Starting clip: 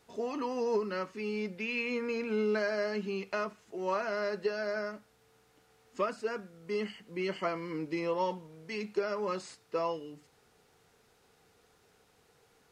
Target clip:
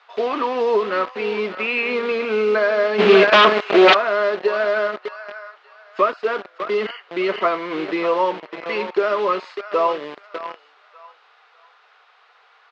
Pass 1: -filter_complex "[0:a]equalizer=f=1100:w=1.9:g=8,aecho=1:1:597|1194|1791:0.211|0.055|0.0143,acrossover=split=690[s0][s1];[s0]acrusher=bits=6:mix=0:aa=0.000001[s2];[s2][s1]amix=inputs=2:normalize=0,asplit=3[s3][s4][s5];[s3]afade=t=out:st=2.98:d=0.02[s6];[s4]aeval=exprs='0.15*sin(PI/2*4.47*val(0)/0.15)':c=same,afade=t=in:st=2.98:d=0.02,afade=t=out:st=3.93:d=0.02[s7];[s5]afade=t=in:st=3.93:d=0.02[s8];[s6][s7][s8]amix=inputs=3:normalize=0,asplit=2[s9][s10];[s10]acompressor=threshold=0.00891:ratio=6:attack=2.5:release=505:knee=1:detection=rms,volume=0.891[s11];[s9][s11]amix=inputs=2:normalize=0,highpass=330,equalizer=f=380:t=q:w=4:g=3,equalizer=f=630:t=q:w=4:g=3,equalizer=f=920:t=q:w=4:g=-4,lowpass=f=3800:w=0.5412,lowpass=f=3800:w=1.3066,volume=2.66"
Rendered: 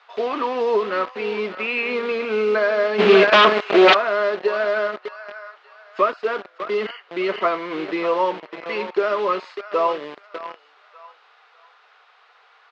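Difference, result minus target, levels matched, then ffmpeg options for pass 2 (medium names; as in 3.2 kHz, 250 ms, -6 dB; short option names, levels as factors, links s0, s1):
compression: peak gain reduction +7 dB
-filter_complex "[0:a]equalizer=f=1100:w=1.9:g=8,aecho=1:1:597|1194|1791:0.211|0.055|0.0143,acrossover=split=690[s0][s1];[s0]acrusher=bits=6:mix=0:aa=0.000001[s2];[s2][s1]amix=inputs=2:normalize=0,asplit=3[s3][s4][s5];[s3]afade=t=out:st=2.98:d=0.02[s6];[s4]aeval=exprs='0.15*sin(PI/2*4.47*val(0)/0.15)':c=same,afade=t=in:st=2.98:d=0.02,afade=t=out:st=3.93:d=0.02[s7];[s5]afade=t=in:st=3.93:d=0.02[s8];[s6][s7][s8]amix=inputs=3:normalize=0,asplit=2[s9][s10];[s10]acompressor=threshold=0.0237:ratio=6:attack=2.5:release=505:knee=1:detection=rms,volume=0.891[s11];[s9][s11]amix=inputs=2:normalize=0,highpass=330,equalizer=f=380:t=q:w=4:g=3,equalizer=f=630:t=q:w=4:g=3,equalizer=f=920:t=q:w=4:g=-4,lowpass=f=3800:w=0.5412,lowpass=f=3800:w=1.3066,volume=2.66"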